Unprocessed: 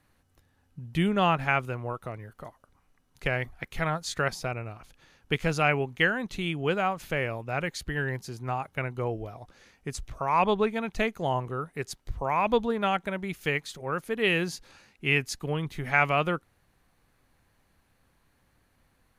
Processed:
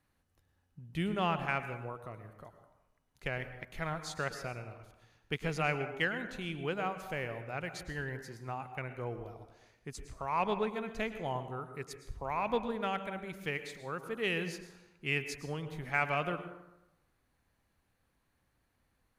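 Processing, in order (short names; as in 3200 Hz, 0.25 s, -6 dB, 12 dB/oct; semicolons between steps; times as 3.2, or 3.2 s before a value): plate-style reverb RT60 0.91 s, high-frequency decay 0.55×, pre-delay 95 ms, DRR 9 dB; added harmonics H 7 -35 dB, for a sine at -8 dBFS; gain -8 dB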